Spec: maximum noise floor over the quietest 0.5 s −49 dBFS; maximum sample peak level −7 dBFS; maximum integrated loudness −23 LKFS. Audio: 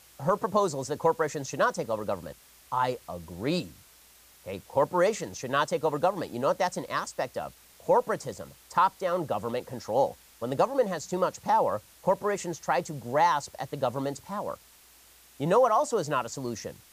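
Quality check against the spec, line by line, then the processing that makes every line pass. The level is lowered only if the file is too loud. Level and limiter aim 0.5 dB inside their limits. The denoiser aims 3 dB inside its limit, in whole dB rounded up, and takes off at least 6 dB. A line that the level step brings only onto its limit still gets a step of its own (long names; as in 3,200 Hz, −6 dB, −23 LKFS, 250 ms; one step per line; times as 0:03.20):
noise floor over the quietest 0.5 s −56 dBFS: in spec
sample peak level −12.0 dBFS: in spec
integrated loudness −28.5 LKFS: in spec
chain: no processing needed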